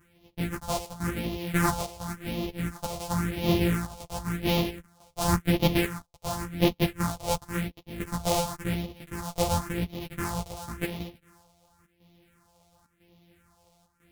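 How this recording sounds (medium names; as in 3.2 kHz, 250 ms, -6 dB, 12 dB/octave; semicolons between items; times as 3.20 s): a buzz of ramps at a fixed pitch in blocks of 256 samples; phasing stages 4, 0.93 Hz, lowest notch 270–1500 Hz; chopped level 1 Hz, depth 65%, duty 85%; a shimmering, thickened sound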